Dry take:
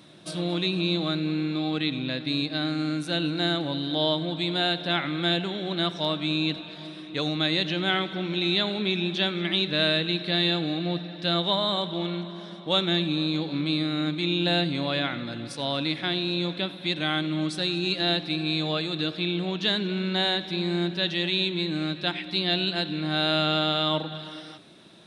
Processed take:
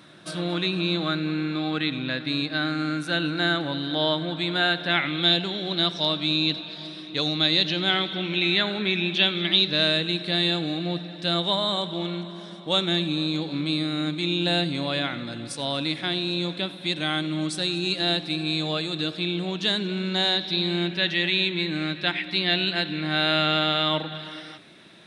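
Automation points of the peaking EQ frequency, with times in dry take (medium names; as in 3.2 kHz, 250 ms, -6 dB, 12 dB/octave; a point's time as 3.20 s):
peaking EQ +8.5 dB 0.9 oct
4.81 s 1.5 kHz
5.35 s 4.6 kHz
7.95 s 4.6 kHz
8.73 s 1.5 kHz
10.11 s 8.4 kHz
20.01 s 8.4 kHz
21.05 s 2 kHz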